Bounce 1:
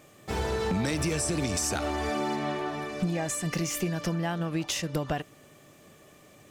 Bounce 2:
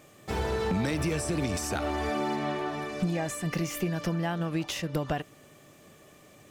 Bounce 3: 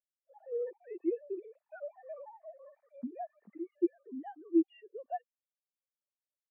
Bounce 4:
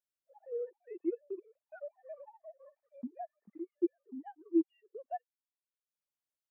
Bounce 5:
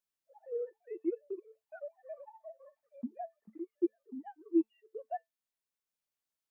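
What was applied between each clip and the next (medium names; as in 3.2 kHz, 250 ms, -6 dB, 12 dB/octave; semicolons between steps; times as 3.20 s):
dynamic bell 7 kHz, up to -7 dB, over -46 dBFS, Q 0.79
formants replaced by sine waves; spectral contrast expander 2.5:1; trim -3 dB
transient shaper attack +1 dB, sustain -11 dB; trim -2.5 dB
feedback comb 220 Hz, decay 0.16 s, harmonics all, mix 60%; trim +7 dB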